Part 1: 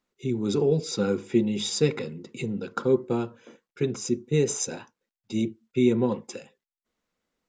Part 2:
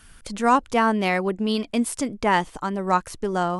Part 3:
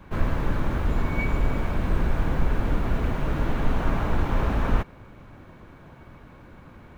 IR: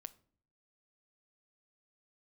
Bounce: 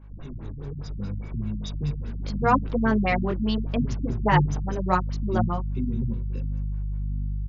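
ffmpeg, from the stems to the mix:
-filter_complex "[0:a]acrossover=split=140|3000[link_01][link_02][link_03];[link_02]acompressor=threshold=-34dB:ratio=10[link_04];[link_01][link_04][link_03]amix=inputs=3:normalize=0,aeval=exprs='val(0)+0.0126*(sin(2*PI*50*n/s)+sin(2*PI*2*50*n/s)/2+sin(2*PI*3*50*n/s)/3+sin(2*PI*4*50*n/s)/4+sin(2*PI*5*50*n/s)/5)':channel_layout=same,asubboost=boost=8.5:cutoff=240,volume=-4.5dB,asplit=2[link_05][link_06];[link_06]volume=-13dB[link_07];[1:a]acrusher=bits=8:mix=0:aa=0.000001,adelay=2000,volume=1.5dB[link_08];[2:a]acompressor=threshold=-25dB:ratio=6,volume=-10dB,asplit=2[link_09][link_10];[link_10]volume=-8dB[link_11];[link_07][link_11]amix=inputs=2:normalize=0,aecho=0:1:93|186|279|372|465|558|651:1|0.47|0.221|0.104|0.0488|0.0229|0.0108[link_12];[link_05][link_08][link_09][link_12]amix=inputs=4:normalize=0,flanger=delay=18:depth=4.2:speed=0.73,afftfilt=real='re*lt(b*sr/1024,230*pow(7300/230,0.5+0.5*sin(2*PI*4.9*pts/sr)))':imag='im*lt(b*sr/1024,230*pow(7300/230,0.5+0.5*sin(2*PI*4.9*pts/sr)))':win_size=1024:overlap=0.75"

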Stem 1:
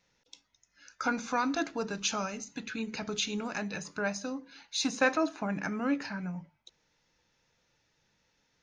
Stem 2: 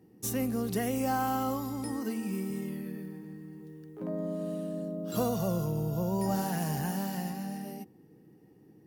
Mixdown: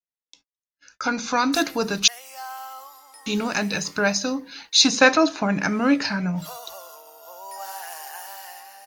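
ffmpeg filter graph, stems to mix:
ffmpeg -i stem1.wav -i stem2.wav -filter_complex "[0:a]agate=range=-36dB:threshold=-58dB:ratio=16:detection=peak,volume=1dB,asplit=3[link_01][link_02][link_03];[link_01]atrim=end=2.08,asetpts=PTS-STARTPTS,afade=type=out:start_time=2.076:duration=0.004:curve=hsin[link_04];[link_02]atrim=start=2.08:end=3.26,asetpts=PTS-STARTPTS,volume=0[link_05];[link_03]atrim=start=3.26,asetpts=PTS-STARTPTS,afade=type=in:duration=0.004:curve=hsin[link_06];[link_04][link_05][link_06]concat=n=3:v=0:a=1[link_07];[1:a]highpass=frequency=760:width=0.5412,highpass=frequency=760:width=1.3066,adelay=1300,volume=-12dB[link_08];[link_07][link_08]amix=inputs=2:normalize=0,adynamicequalizer=threshold=0.00251:dfrequency=4500:dqfactor=1.2:tfrequency=4500:tqfactor=1.2:attack=5:release=100:ratio=0.375:range=4:mode=boostabove:tftype=bell,dynaudnorm=framelen=490:gausssize=5:maxgain=15dB" out.wav

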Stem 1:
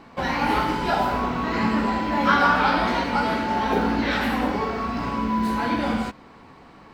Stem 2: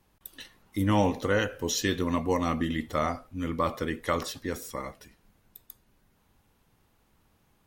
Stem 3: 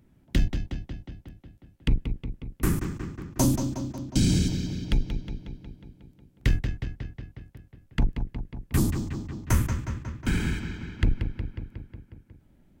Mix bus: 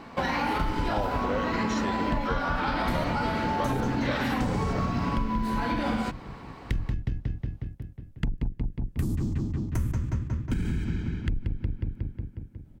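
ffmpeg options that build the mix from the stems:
ffmpeg -i stem1.wav -i stem2.wav -i stem3.wav -filter_complex "[0:a]alimiter=limit=-16dB:level=0:latency=1,volume=2.5dB[link_01];[1:a]lowpass=6200,equalizer=frequency=610:width=1.5:gain=9.5,volume=-4dB[link_02];[2:a]alimiter=limit=-20.5dB:level=0:latency=1:release=129,lowshelf=frequency=470:gain=11,adelay=250,volume=-2dB[link_03];[link_01][link_02][link_03]amix=inputs=3:normalize=0,acompressor=threshold=-24dB:ratio=6" out.wav

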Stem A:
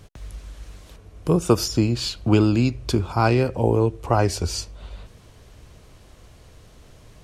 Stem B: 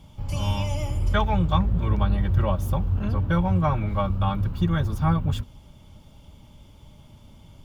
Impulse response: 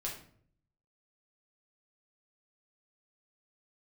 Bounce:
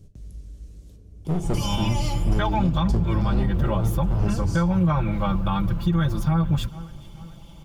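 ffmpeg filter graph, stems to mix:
-filter_complex "[0:a]firequalizer=gain_entry='entry(230,0);entry(910,-23);entry(6000,-9)':delay=0.05:min_phase=1,volume=21dB,asoftclip=hard,volume=-21dB,volume=-4dB,asplit=2[link_01][link_02];[link_02]volume=-3.5dB[link_03];[1:a]aecho=1:1:5.9:0.76,adelay=1250,volume=2.5dB,asplit=2[link_04][link_05];[link_05]volume=-24dB[link_06];[2:a]atrim=start_sample=2205[link_07];[link_03][link_07]afir=irnorm=-1:irlink=0[link_08];[link_06]aecho=0:1:434|868|1302|1736|2170|2604|3038:1|0.48|0.23|0.111|0.0531|0.0255|0.0122[link_09];[link_01][link_04][link_08][link_09]amix=inputs=4:normalize=0,alimiter=limit=-13dB:level=0:latency=1:release=87"

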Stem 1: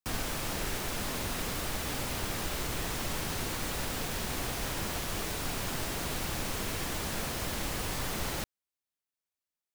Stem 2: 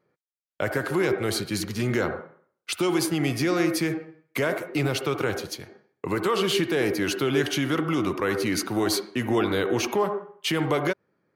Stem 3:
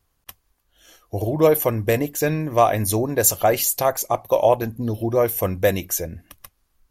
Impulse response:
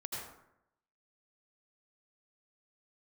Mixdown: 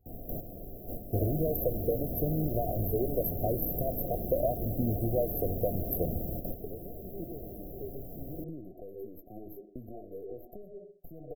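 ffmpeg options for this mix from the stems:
-filter_complex "[0:a]volume=1.5dB[link_01];[1:a]lowshelf=frequency=410:gain=-8,acompressor=threshold=-36dB:ratio=8,aeval=exprs='0.106*(cos(1*acos(clip(val(0)/0.106,-1,1)))-cos(1*PI/2))+0.0168*(cos(3*acos(clip(val(0)/0.106,-1,1)))-cos(3*PI/2))+0.0168*(cos(4*acos(clip(val(0)/0.106,-1,1)))-cos(4*PI/2))+0.00335*(cos(5*acos(clip(val(0)/0.106,-1,1)))-cos(5*PI/2))':channel_layout=same,adelay=600,volume=-1dB[link_02];[2:a]volume=-4.5dB,asplit=2[link_03][link_04];[link_04]apad=whole_len=429829[link_05];[link_01][link_05]sidechaingate=range=-9dB:threshold=-54dB:ratio=16:detection=peak[link_06];[link_02][link_03]amix=inputs=2:normalize=0,aphaser=in_gain=1:out_gain=1:delay=2.5:decay=0.55:speed=0.83:type=triangular,acompressor=threshold=-27dB:ratio=5,volume=0dB[link_07];[link_06][link_07]amix=inputs=2:normalize=0,afftfilt=real='re*(1-between(b*sr/4096,750,12000))':imag='im*(1-between(b*sr/4096,750,12000))':win_size=4096:overlap=0.75"

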